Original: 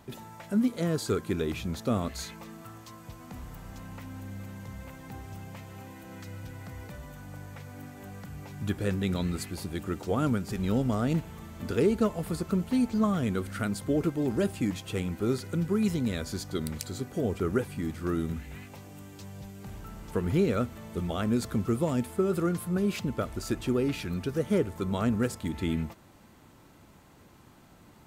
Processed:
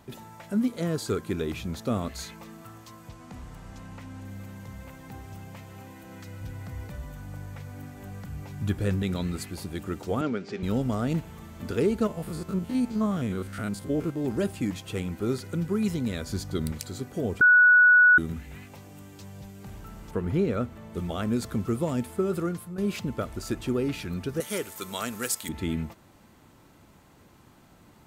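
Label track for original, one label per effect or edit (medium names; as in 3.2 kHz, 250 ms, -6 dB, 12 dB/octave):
3.090000	4.250000	low-pass 9.8 kHz
6.410000	9.030000	bass shelf 95 Hz +10.5 dB
10.210000	10.630000	cabinet simulation 230–5500 Hz, peaks and dips at 410 Hz +6 dB, 980 Hz -5 dB, 2.2 kHz +4 dB
12.070000	14.250000	spectrogram pixelated in time every 50 ms
16.290000	16.720000	bass shelf 170 Hz +8 dB
17.410000	18.180000	bleep 1.47 kHz -13 dBFS
20.110000	20.950000	treble shelf 3.2 kHz -8.5 dB
22.230000	22.780000	fade out equal-power, to -12 dB
24.400000	25.490000	tilt EQ +4.5 dB/octave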